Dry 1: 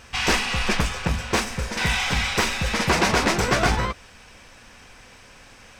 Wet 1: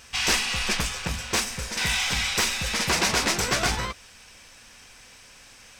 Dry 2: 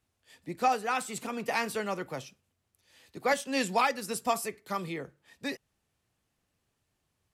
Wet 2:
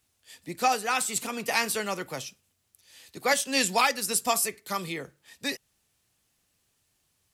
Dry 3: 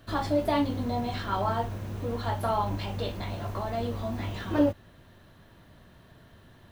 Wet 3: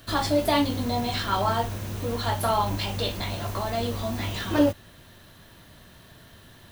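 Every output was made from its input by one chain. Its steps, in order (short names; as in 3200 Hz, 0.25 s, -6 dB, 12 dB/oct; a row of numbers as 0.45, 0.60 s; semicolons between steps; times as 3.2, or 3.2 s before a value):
high shelf 2700 Hz +12 dB; normalise peaks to -9 dBFS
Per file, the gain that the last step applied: -7.0, +0.5, +2.5 dB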